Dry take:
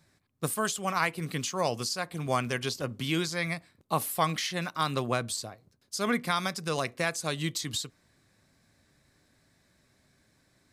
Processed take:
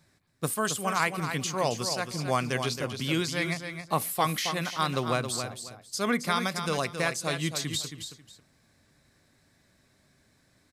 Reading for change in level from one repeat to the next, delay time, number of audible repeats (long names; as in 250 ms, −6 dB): −13.0 dB, 271 ms, 2